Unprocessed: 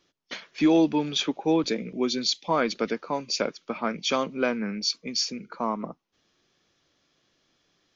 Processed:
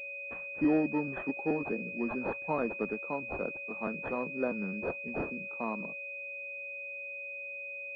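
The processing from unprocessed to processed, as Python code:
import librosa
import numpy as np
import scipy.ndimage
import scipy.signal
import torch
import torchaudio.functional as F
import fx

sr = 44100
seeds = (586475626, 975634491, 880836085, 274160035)

y = fx.pitch_trill(x, sr, semitones=-1.0, every_ms=215)
y = y + 10.0 ** (-42.0 / 20.0) * np.sin(2.0 * np.pi * 560.0 * np.arange(len(y)) / sr)
y = fx.pwm(y, sr, carrier_hz=2500.0)
y = F.gain(torch.from_numpy(y), -6.5).numpy()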